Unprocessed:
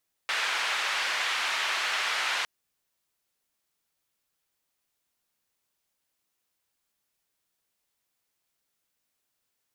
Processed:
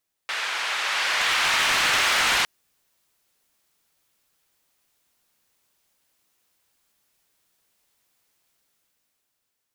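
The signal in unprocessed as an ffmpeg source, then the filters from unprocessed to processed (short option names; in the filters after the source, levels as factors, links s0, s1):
-f lavfi -i "anoisesrc=c=white:d=2.16:r=44100:seed=1,highpass=f=1100,lowpass=f=2600,volume=-13dB"
-af "dynaudnorm=f=260:g=9:m=2.99,aeval=exprs='0.168*(abs(mod(val(0)/0.168+3,4)-2)-1)':c=same"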